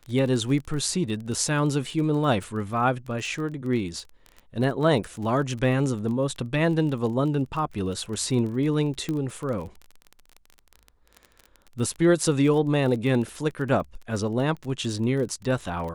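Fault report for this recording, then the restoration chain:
crackle 26/s -32 dBFS
9.09 pop -17 dBFS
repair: de-click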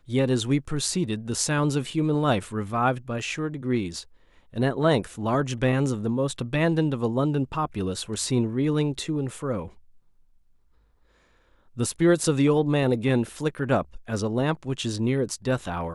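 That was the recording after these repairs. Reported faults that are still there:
none

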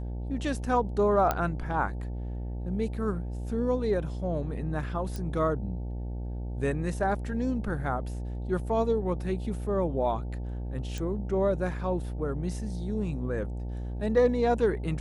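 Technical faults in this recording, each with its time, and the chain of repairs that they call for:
buzz 60 Hz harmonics 15 -34 dBFS
1.31 pop -12 dBFS
5.16 pop
10.98 pop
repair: de-click; de-hum 60 Hz, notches 15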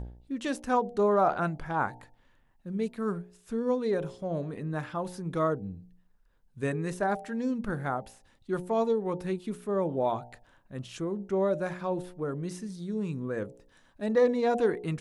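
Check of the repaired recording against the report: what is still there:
none

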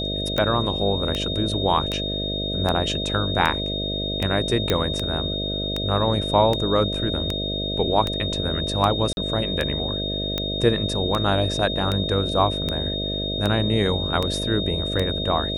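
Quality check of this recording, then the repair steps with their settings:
buzz 50 Hz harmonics 13 -29 dBFS
tick 78 rpm -10 dBFS
tone 3700 Hz -27 dBFS
4.7 pop -6 dBFS
9.13–9.17 gap 41 ms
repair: de-click; de-hum 50 Hz, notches 13; notch 3700 Hz, Q 30; interpolate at 9.13, 41 ms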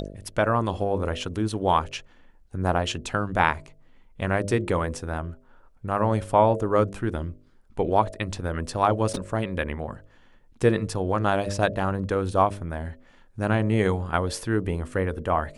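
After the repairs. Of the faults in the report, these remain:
none

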